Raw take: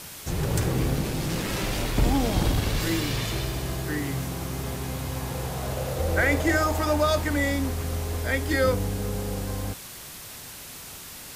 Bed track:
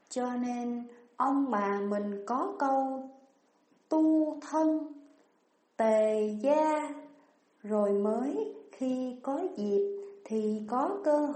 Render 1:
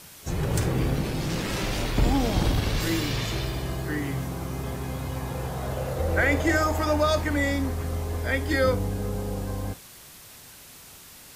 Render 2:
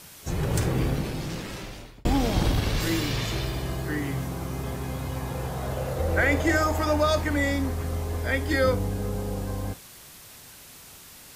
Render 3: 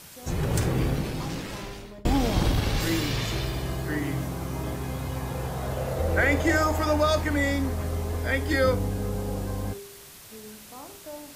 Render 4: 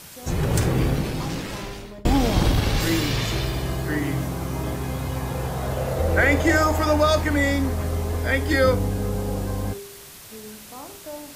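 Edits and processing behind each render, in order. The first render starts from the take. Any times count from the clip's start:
noise print and reduce 6 dB
0.82–2.05 s: fade out
add bed track -14.5 dB
trim +4 dB

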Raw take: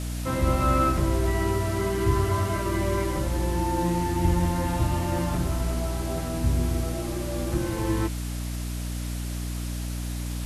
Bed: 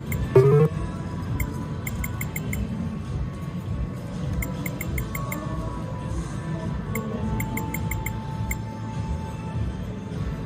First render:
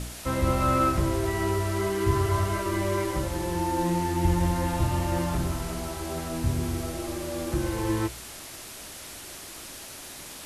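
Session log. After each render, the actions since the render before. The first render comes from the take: de-hum 60 Hz, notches 11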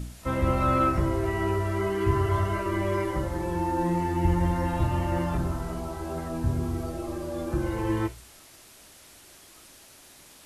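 noise print and reduce 10 dB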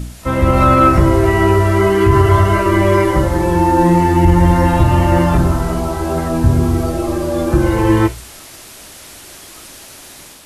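level rider gain up to 5 dB; loudness maximiser +10 dB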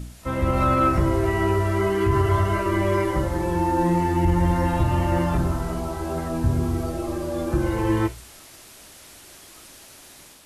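trim -9.5 dB

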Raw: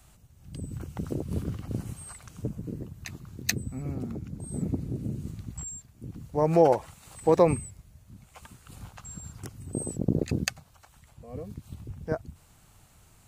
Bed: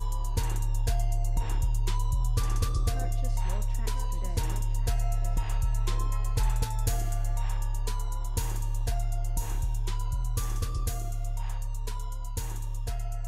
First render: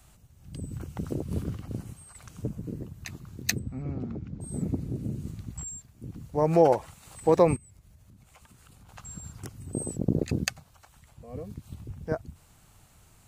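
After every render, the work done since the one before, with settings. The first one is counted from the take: 1.44–2.15 s: fade out, to -8.5 dB; 3.59–4.41 s: distance through air 150 m; 7.56–8.89 s: compression 8:1, threshold -50 dBFS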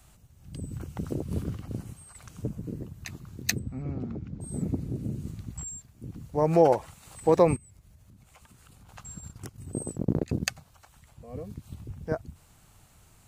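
9.03–10.45 s: transient shaper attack -1 dB, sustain -9 dB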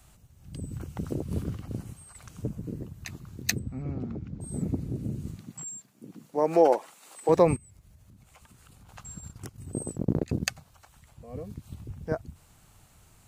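5.36–7.28 s: high-pass 140 Hz -> 310 Hz 24 dB/octave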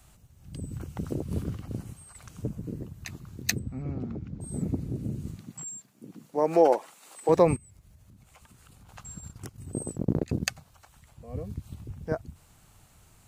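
11.25–11.67 s: peaking EQ 71 Hz +7.5 dB 1.6 oct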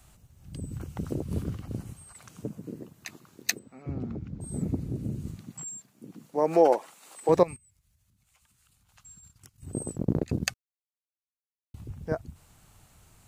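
2.13–3.86 s: high-pass 130 Hz -> 520 Hz; 7.43–9.63 s: amplifier tone stack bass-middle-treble 5-5-5; 10.54–11.74 s: mute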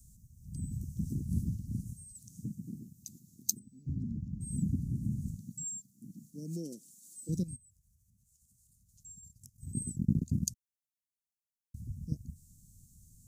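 elliptic band-stop 220–6100 Hz, stop band 70 dB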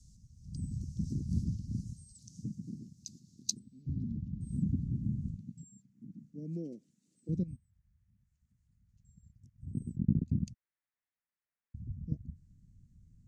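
low-pass sweep 4.9 kHz -> 1.9 kHz, 3.10–6.20 s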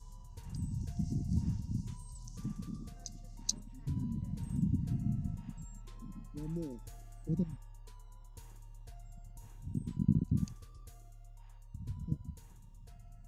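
add bed -22.5 dB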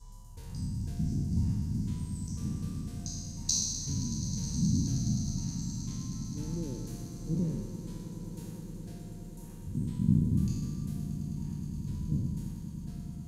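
spectral sustain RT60 1.41 s; echo with a slow build-up 105 ms, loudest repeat 8, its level -16.5 dB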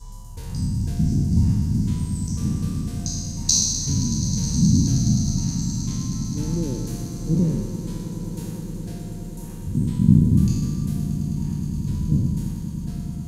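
trim +11 dB; peak limiter -1 dBFS, peak gain reduction 1 dB

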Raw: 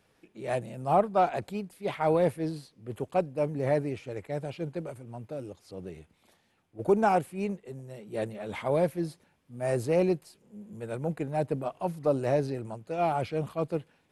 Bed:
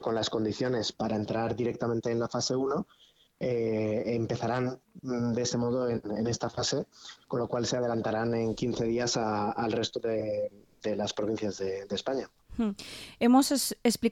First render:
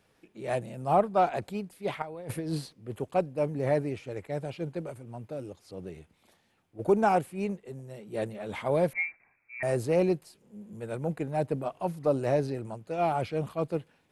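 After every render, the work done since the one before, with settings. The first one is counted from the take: 2.02–2.73 s: compressor with a negative ratio -36 dBFS; 8.93–9.63 s: frequency inversion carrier 2.5 kHz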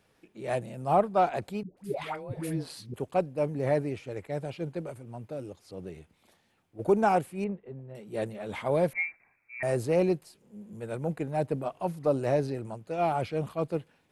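1.63–2.94 s: phase dispersion highs, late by 140 ms, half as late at 530 Hz; 7.44–7.95 s: distance through air 480 m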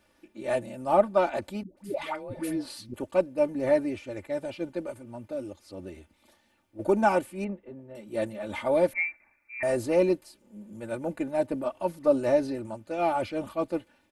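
comb 3.4 ms, depth 80%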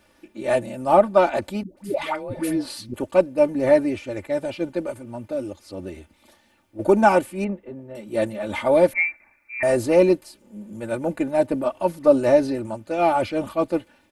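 trim +7 dB; peak limiter -3 dBFS, peak gain reduction 2.5 dB

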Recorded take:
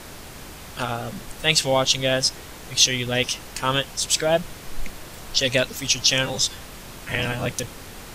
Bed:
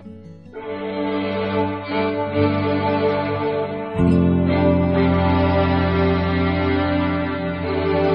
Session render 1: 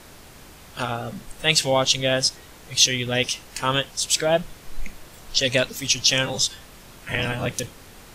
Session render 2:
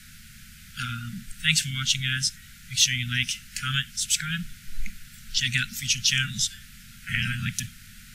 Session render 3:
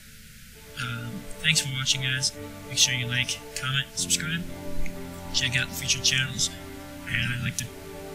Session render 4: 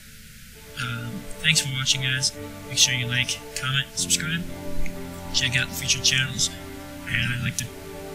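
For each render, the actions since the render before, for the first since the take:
noise print and reduce 6 dB
dynamic bell 4.7 kHz, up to -5 dB, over -32 dBFS, Q 1.6; Chebyshev band-stop 230–1400 Hz, order 5
add bed -22 dB
trim +2.5 dB

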